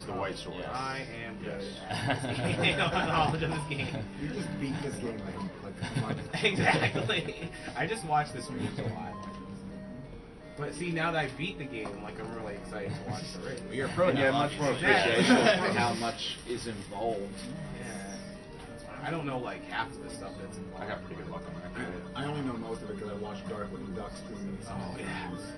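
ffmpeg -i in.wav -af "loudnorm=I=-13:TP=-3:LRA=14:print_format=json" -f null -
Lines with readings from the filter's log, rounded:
"input_i" : "-32.6",
"input_tp" : "-9.4",
"input_lra" : "11.7",
"input_thresh" : "-42.8",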